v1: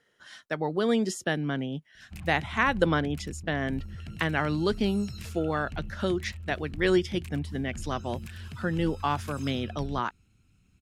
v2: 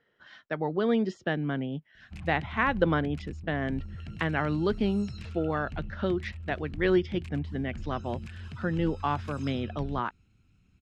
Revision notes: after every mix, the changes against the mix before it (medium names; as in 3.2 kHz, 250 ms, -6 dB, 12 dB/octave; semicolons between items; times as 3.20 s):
speech: add distance through air 170 m; master: add distance through air 88 m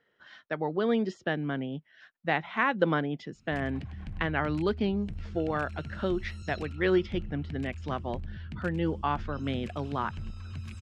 speech: add bass shelf 170 Hz -5 dB; background: entry +1.40 s